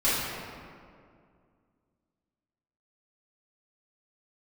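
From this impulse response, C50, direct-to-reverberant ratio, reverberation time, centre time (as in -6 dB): -2.5 dB, -12.5 dB, 2.2 s, 136 ms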